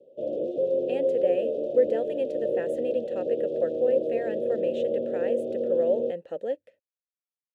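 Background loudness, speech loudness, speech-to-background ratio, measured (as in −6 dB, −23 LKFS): −29.0 LKFS, −29.5 LKFS, −0.5 dB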